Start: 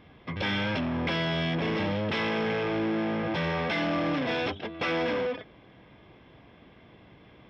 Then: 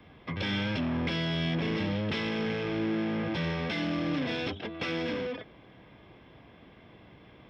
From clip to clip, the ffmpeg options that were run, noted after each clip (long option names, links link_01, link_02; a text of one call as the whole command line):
ffmpeg -i in.wav -filter_complex "[0:a]acrossover=split=500|3000[link_01][link_02][link_03];[link_02]acompressor=threshold=-35dB:ratio=6[link_04];[link_01][link_04][link_03]amix=inputs=3:normalize=0,acrossover=split=140|440|1200[link_05][link_06][link_07][link_08];[link_07]alimiter=level_in=13.5dB:limit=-24dB:level=0:latency=1,volume=-13.5dB[link_09];[link_05][link_06][link_09][link_08]amix=inputs=4:normalize=0" out.wav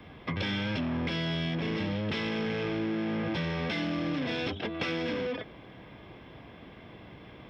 ffmpeg -i in.wav -af "acompressor=threshold=-34dB:ratio=4,volume=5dB" out.wav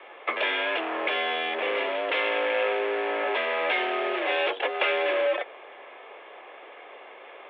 ffmpeg -i in.wav -filter_complex "[0:a]asplit=2[link_01][link_02];[link_02]acrusher=bits=5:mix=0:aa=0.000001,volume=-10dB[link_03];[link_01][link_03]amix=inputs=2:normalize=0,highpass=frequency=390:width_type=q:width=0.5412,highpass=frequency=390:width_type=q:width=1.307,lowpass=frequency=3000:width_type=q:width=0.5176,lowpass=frequency=3000:width_type=q:width=0.7071,lowpass=frequency=3000:width_type=q:width=1.932,afreqshift=74,volume=7.5dB" out.wav